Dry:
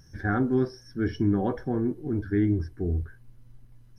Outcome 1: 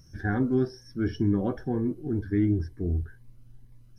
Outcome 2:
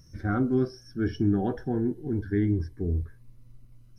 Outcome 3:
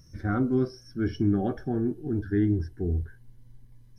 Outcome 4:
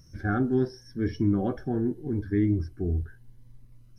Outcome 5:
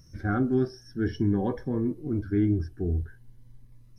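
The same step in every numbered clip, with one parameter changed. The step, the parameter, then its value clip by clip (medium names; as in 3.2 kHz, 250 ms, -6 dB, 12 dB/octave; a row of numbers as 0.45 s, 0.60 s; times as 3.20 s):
Shepard-style phaser, rate: 2.1 Hz, 0.29 Hz, 0.2 Hz, 0.8 Hz, 0.5 Hz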